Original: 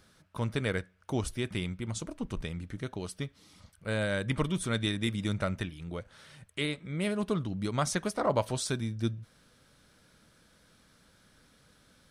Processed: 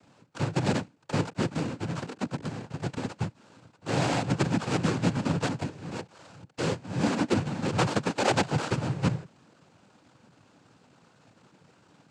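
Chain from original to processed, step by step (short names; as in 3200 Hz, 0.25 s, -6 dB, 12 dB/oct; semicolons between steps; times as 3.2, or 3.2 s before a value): half-waves squared off; sample-and-hold 18×; noise vocoder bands 8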